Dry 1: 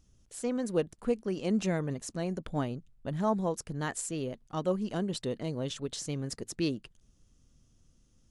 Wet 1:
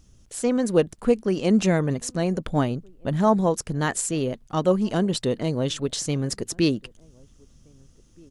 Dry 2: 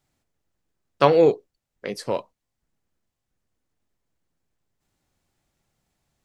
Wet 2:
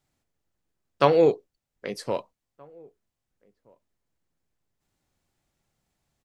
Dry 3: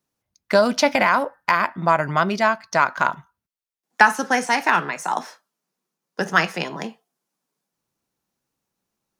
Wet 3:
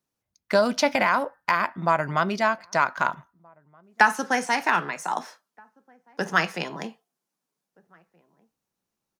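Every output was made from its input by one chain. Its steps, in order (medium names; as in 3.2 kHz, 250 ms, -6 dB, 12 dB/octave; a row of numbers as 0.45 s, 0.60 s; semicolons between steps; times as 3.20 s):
echo from a far wall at 270 m, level -29 dB; normalise loudness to -24 LUFS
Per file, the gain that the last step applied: +9.5 dB, -2.5 dB, -4.0 dB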